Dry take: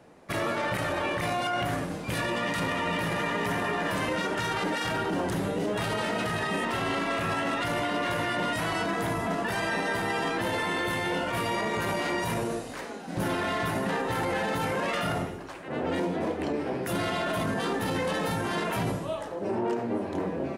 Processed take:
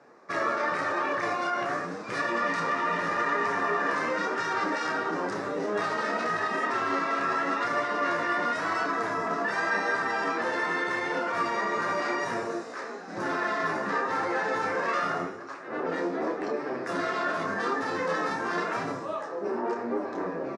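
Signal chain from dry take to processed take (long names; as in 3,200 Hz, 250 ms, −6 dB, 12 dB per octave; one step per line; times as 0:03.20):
low-shelf EQ 460 Hz +4 dB
flanger 0.9 Hz, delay 6.7 ms, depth 8 ms, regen +36%
loudspeaker in its box 290–7,100 Hz, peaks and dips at 430 Hz +3 dB, 1,200 Hz +10 dB, 1,700 Hz +6 dB, 3,100 Hz −9 dB, 5,400 Hz +5 dB
double-tracking delay 29 ms −7 dB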